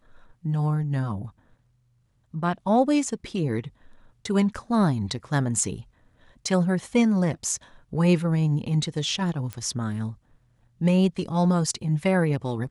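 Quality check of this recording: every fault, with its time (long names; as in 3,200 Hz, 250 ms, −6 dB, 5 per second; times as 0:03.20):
0:09.53: click −18 dBFS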